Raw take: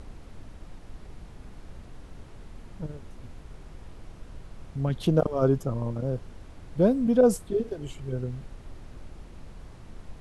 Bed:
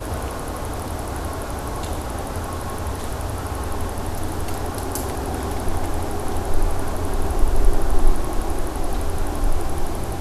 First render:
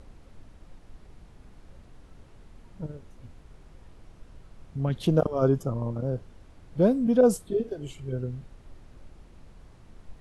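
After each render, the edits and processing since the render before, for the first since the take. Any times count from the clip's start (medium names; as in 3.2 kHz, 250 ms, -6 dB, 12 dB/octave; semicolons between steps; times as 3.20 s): noise print and reduce 6 dB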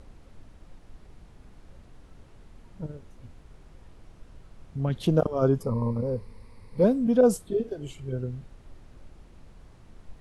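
5.61–6.84 s: rippled EQ curve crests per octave 0.91, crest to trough 13 dB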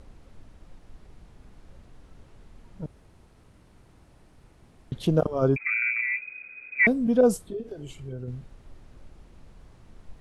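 2.86–4.92 s: room tone; 5.56–6.87 s: frequency inversion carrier 2.5 kHz; 7.40–8.28 s: compression 2:1, threshold -35 dBFS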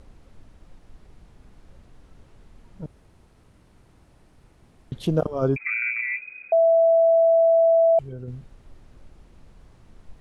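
6.52–7.99 s: bleep 661 Hz -13.5 dBFS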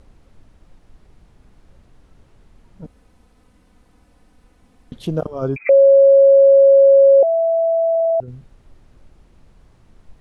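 2.84–4.96 s: comb 4 ms; 5.69–7.23 s: bleep 549 Hz -6 dBFS; 7.90 s: stutter in place 0.05 s, 6 plays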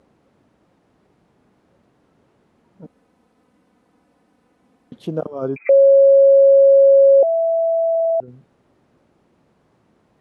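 high-pass 200 Hz 12 dB/octave; treble shelf 2 kHz -9 dB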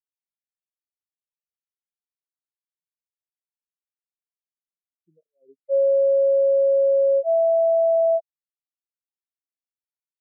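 peak limiter -14.5 dBFS, peak gain reduction 8 dB; spectral contrast expander 4:1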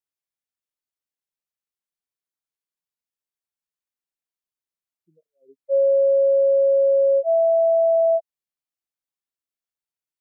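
trim +1 dB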